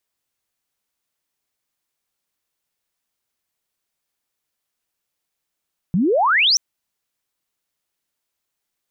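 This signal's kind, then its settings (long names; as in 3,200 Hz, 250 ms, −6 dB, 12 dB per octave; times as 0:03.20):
glide logarithmic 160 Hz → 6,100 Hz −14.5 dBFS → −12 dBFS 0.63 s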